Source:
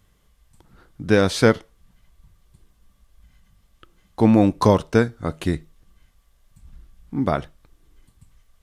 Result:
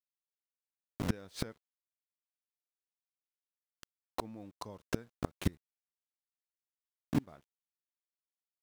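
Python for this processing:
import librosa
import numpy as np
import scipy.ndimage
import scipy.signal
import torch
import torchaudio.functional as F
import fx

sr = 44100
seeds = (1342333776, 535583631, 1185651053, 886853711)

y = np.where(np.abs(x) >= 10.0 ** (-30.5 / 20.0), x, 0.0)
y = fx.gate_flip(y, sr, shuts_db=-15.0, range_db=-32)
y = y * librosa.db_to_amplitude(-1.5)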